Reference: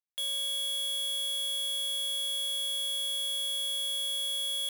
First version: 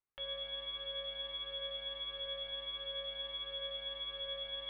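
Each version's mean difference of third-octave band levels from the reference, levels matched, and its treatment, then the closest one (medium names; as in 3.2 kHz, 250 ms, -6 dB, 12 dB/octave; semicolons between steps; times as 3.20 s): 15.0 dB: Bessel low-pass 1.6 kHz, order 8; Shepard-style flanger rising 1.5 Hz; trim +10 dB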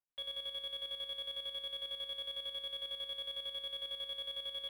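9.5 dB: square tremolo 11 Hz, depth 60%, duty 45%; distance through air 450 m; trim +3 dB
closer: second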